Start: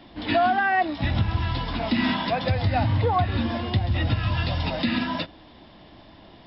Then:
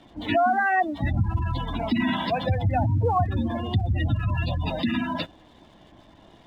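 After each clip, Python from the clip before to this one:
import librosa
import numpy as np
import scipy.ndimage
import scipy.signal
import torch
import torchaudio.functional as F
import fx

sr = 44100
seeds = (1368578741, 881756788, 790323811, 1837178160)

y = fx.spec_gate(x, sr, threshold_db=-20, keep='strong')
y = np.sign(y) * np.maximum(np.abs(y) - 10.0 ** (-56.0 / 20.0), 0.0)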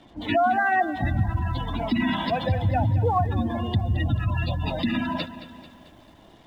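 y = fx.echo_crushed(x, sr, ms=220, feedback_pct=55, bits=9, wet_db=-14.0)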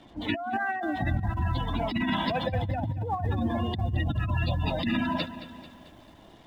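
y = fx.over_compress(x, sr, threshold_db=-24.0, ratio=-0.5)
y = F.gain(torch.from_numpy(y), -2.5).numpy()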